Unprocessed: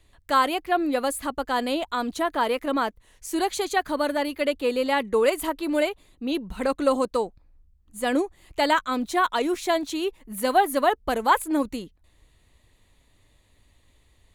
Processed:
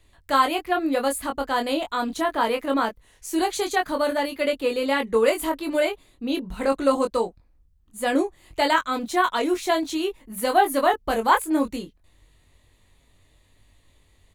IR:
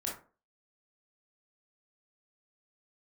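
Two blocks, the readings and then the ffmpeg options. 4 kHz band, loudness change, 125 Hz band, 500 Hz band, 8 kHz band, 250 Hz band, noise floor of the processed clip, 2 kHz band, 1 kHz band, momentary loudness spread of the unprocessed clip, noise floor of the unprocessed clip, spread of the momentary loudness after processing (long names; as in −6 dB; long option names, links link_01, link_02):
+1.5 dB, +1.5 dB, can't be measured, +1.5 dB, +1.5 dB, +1.0 dB, −61 dBFS, +1.5 dB, +1.0 dB, 8 LU, −62 dBFS, 8 LU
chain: -filter_complex "[0:a]asplit=2[link_01][link_02];[link_02]adelay=22,volume=-4.5dB[link_03];[link_01][link_03]amix=inputs=2:normalize=0"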